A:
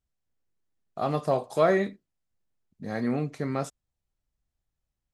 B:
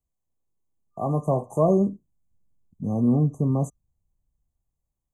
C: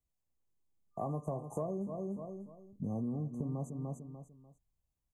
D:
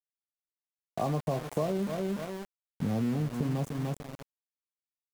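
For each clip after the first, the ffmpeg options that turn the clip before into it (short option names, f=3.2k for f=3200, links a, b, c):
-filter_complex "[0:a]afftfilt=real='re*(1-between(b*sr/4096,1200,6000))':imag='im*(1-between(b*sr/4096,1200,6000))':win_size=4096:overlap=0.75,acrossover=split=230|390|4100[a][b][c][d];[a]dynaudnorm=f=280:g=9:m=12.5dB[e];[e][b][c][d]amix=inputs=4:normalize=0"
-af "aecho=1:1:296|592|888:0.282|0.0789|0.0221,acompressor=threshold=-30dB:ratio=10,volume=-4dB"
-af "aeval=exprs='val(0)*gte(abs(val(0)),0.00631)':c=same,volume=7dB"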